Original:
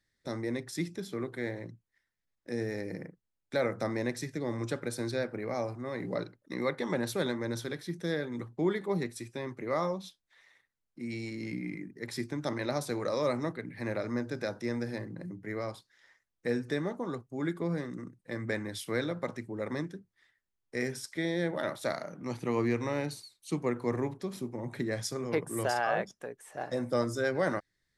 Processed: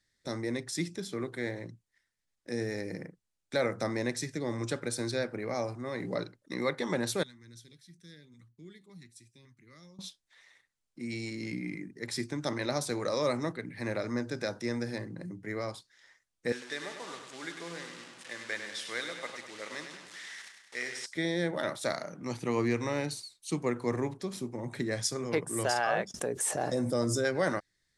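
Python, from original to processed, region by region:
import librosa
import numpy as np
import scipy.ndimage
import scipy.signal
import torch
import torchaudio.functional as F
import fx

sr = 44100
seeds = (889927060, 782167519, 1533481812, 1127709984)

y = fx.chain(x, sr, fx.tone_stack(knobs='6-0-2'),
    fx.filter_lfo_notch(shape='saw_up', hz=1.8, low_hz=290.0, high_hz=2000.0, q=1.6), at=(7.23, 9.99))
y = fx.chain(y, sr, fx.delta_mod(bps=64000, step_db=-40.0),
    fx.bandpass_q(hz=2400.0, q=0.59),
    fx.echo_feedback(ms=100, feedback_pct=55, wet_db=-7.5), at=(16.52, 21.06))
y = fx.chain(y, sr, fx.highpass(hz=43.0, slope=12),
    fx.peak_eq(hz=2000.0, db=-8.0, octaves=2.5),
    fx.env_flatten(amount_pct=70), at=(26.14, 27.25))
y = scipy.signal.sosfilt(scipy.signal.butter(4, 10000.0, 'lowpass', fs=sr, output='sos'), y)
y = fx.high_shelf(y, sr, hz=3700.0, db=8.0)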